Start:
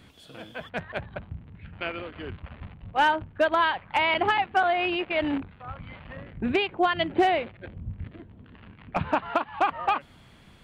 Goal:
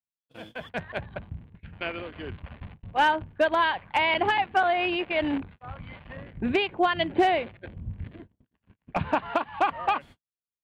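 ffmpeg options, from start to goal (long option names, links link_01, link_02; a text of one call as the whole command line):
ffmpeg -i in.wav -af "bandreject=frequency=1300:width=13,agate=range=-57dB:threshold=-44dB:ratio=16:detection=peak" out.wav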